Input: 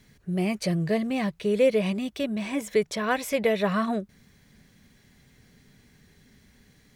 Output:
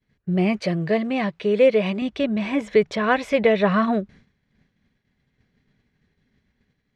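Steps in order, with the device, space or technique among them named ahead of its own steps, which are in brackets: hearing-loss simulation (low-pass 3.4 kHz 12 dB/octave; expander -46 dBFS); 0.60–2.02 s: high-pass 250 Hz 6 dB/octave; trim +6 dB

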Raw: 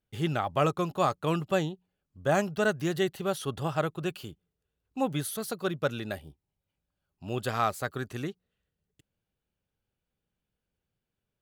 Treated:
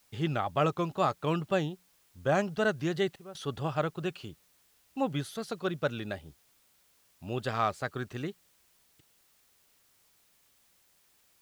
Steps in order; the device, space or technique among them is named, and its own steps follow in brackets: worn cassette (low-pass 6 kHz 12 dB/octave; wow and flutter; level dips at 3.16 s, 187 ms -15 dB; white noise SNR 33 dB); trim -1.5 dB

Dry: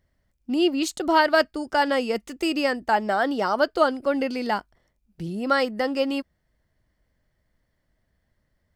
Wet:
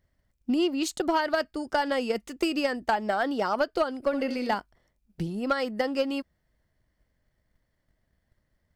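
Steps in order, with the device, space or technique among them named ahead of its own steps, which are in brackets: drum-bus smash (transient shaper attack +8 dB, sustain +2 dB; compression 6:1, threshold -16 dBFS, peak gain reduction 9 dB; saturation -11.5 dBFS, distortion -19 dB); 3.99–4.55 s: flutter echo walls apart 11.7 m, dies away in 0.41 s; trim -3.5 dB

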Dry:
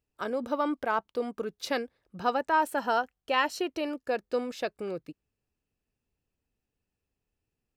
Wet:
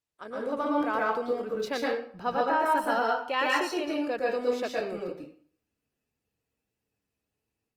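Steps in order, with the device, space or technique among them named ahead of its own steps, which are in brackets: 1.21–2.70 s: peaking EQ 8.5 kHz -4.5 dB 2.4 oct; far-field microphone of a smart speaker (reverberation RT60 0.50 s, pre-delay 110 ms, DRR -3.5 dB; high-pass 150 Hz 6 dB/octave; level rider gain up to 7 dB; trim -9 dB; Opus 24 kbps 48 kHz)

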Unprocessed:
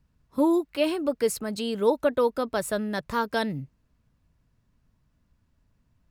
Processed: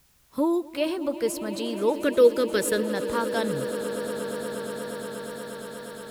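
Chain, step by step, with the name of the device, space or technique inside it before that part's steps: 1.99–2.83 s: FFT filter 170 Hz 0 dB, 470 Hz +11 dB, 720 Hz -16 dB, 1.7 kHz +8 dB; echo with a slow build-up 119 ms, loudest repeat 8, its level -17 dB; noise-reduction cassette on a plain deck (tape noise reduction on one side only encoder only; wow and flutter 26 cents; white noise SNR 37 dB); trim -2 dB

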